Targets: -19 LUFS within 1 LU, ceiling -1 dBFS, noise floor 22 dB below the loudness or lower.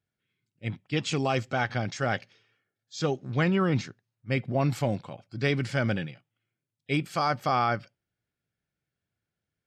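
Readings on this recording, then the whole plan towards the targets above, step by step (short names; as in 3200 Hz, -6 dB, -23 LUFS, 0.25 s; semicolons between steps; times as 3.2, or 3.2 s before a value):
loudness -28.5 LUFS; peak -15.0 dBFS; loudness target -19.0 LUFS
-> gain +9.5 dB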